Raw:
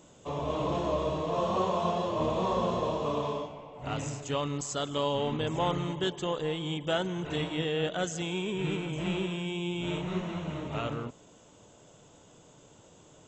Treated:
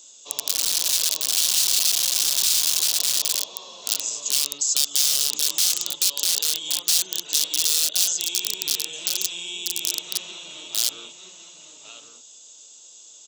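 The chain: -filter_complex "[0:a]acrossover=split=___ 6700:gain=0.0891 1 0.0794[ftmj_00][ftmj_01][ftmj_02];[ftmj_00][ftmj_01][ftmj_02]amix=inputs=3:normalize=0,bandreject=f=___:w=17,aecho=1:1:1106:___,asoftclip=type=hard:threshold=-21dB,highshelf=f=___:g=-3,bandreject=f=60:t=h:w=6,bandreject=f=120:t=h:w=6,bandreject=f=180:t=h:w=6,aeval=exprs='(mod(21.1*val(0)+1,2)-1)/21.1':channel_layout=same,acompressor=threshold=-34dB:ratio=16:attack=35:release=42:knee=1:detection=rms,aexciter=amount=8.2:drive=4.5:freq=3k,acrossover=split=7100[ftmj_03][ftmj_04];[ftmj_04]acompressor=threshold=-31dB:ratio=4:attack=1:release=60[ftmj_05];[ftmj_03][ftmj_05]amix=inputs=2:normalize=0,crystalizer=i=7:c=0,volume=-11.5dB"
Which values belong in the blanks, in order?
250, 3.1k, 0.398, 3.1k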